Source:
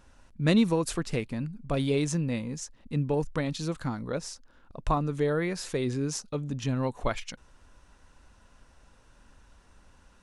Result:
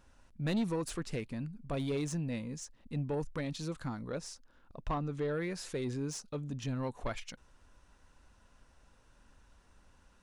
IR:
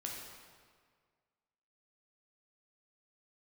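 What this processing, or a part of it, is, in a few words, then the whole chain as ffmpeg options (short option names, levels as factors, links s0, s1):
saturation between pre-emphasis and de-emphasis: -filter_complex "[0:a]asettb=1/sr,asplit=3[s0][s1][s2];[s0]atrim=end=4.814[s3];[s1]atrim=start=4.81:end=5.34,asetpts=PTS-STARTPTS,afade=t=in:d=0.004:c=qsin,afade=t=out:st=0.526:d=0.004:c=qsin,lowpass=6300[s4];[s2]atrim=start=5.336[s5];[s3][s4]acrossfade=d=0.004:c1=hsin:c2=qsin[s6];[s6][s5]acrossfade=d=0.004:c1=qsin:c2=hsin,highshelf=f=3400:g=10,asoftclip=type=tanh:threshold=0.0841,highshelf=f=3400:g=-10,volume=0.531"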